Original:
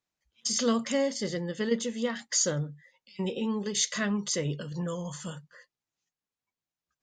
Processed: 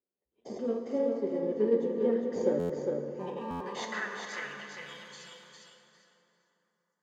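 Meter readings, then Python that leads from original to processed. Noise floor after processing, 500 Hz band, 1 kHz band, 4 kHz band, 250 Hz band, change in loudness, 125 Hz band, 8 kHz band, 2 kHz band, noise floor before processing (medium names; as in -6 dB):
-85 dBFS, +2.5 dB, -0.5 dB, -12.5 dB, -3.5 dB, -2.0 dB, -10.5 dB, -22.0 dB, -2.0 dB, under -85 dBFS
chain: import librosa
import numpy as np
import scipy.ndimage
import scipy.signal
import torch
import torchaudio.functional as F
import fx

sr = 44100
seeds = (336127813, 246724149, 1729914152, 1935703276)

p1 = fx.high_shelf(x, sr, hz=6100.0, db=-6.0)
p2 = fx.tremolo_random(p1, sr, seeds[0], hz=3.5, depth_pct=55)
p3 = fx.notch_comb(p2, sr, f0_hz=160.0)
p4 = fx.sample_hold(p3, sr, seeds[1], rate_hz=1400.0, jitter_pct=0)
p5 = p3 + (p4 * 10.0 ** (-7.0 / 20.0))
p6 = fx.filter_sweep_bandpass(p5, sr, from_hz=410.0, to_hz=7200.0, start_s=2.5, end_s=5.9, q=2.5)
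p7 = p6 + fx.echo_feedback(p6, sr, ms=404, feedback_pct=18, wet_db=-5, dry=0)
p8 = fx.rev_plate(p7, sr, seeds[2], rt60_s=3.5, hf_ratio=0.55, predelay_ms=0, drr_db=4.0)
p9 = fx.buffer_glitch(p8, sr, at_s=(2.59, 3.5), block=512, repeats=8)
y = p9 * 10.0 ** (7.0 / 20.0)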